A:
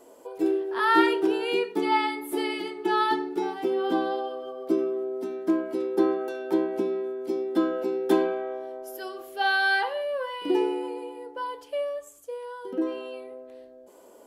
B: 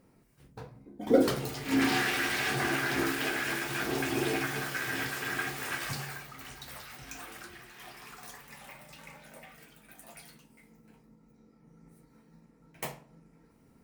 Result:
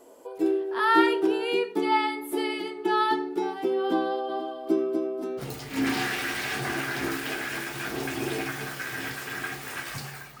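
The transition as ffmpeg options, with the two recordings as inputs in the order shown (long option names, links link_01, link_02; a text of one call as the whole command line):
ffmpeg -i cue0.wav -i cue1.wav -filter_complex "[0:a]asplit=3[link_01][link_02][link_03];[link_01]afade=type=out:start_time=4.28:duration=0.02[link_04];[link_02]aecho=1:1:244|488|732|976:0.562|0.157|0.0441|0.0123,afade=type=in:start_time=4.28:duration=0.02,afade=type=out:start_time=5.43:duration=0.02[link_05];[link_03]afade=type=in:start_time=5.43:duration=0.02[link_06];[link_04][link_05][link_06]amix=inputs=3:normalize=0,apad=whole_dur=10.4,atrim=end=10.4,atrim=end=5.43,asetpts=PTS-STARTPTS[link_07];[1:a]atrim=start=1.32:end=6.35,asetpts=PTS-STARTPTS[link_08];[link_07][link_08]acrossfade=duration=0.06:curve1=tri:curve2=tri" out.wav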